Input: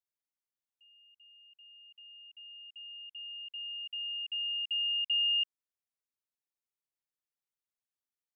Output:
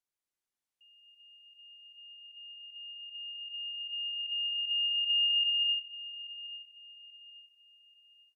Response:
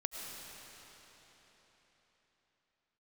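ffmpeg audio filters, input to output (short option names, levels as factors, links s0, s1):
-filter_complex "[0:a]asplit=2[s0][s1];[s1]adelay=834,lowpass=f=2600:p=1,volume=0.251,asplit=2[s2][s3];[s3]adelay=834,lowpass=f=2600:p=1,volume=0.51,asplit=2[s4][s5];[s5]adelay=834,lowpass=f=2600:p=1,volume=0.51,asplit=2[s6][s7];[s7]adelay=834,lowpass=f=2600:p=1,volume=0.51,asplit=2[s8][s9];[s9]adelay=834,lowpass=f=2600:p=1,volume=0.51[s10];[s0][s2][s4][s6][s8][s10]amix=inputs=6:normalize=0[s11];[1:a]atrim=start_sample=2205,afade=t=out:st=0.28:d=0.01,atrim=end_sample=12789,asetrate=24255,aresample=44100[s12];[s11][s12]afir=irnorm=-1:irlink=0"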